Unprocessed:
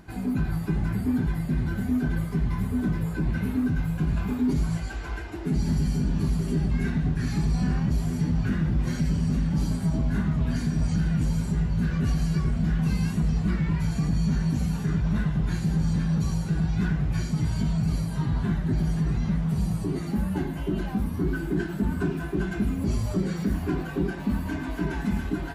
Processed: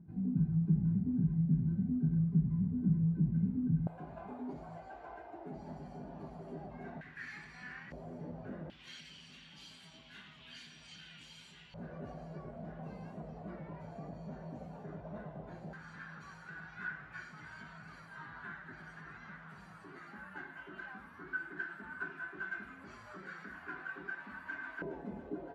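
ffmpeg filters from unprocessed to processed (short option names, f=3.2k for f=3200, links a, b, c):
-af "asetnsamples=n=441:p=0,asendcmd='3.87 bandpass f 690;7.01 bandpass f 1900;7.92 bandpass f 580;8.7 bandpass f 3100;11.74 bandpass f 620;15.73 bandpass f 1500;24.82 bandpass f 510',bandpass=f=170:t=q:w=3.7:csg=0"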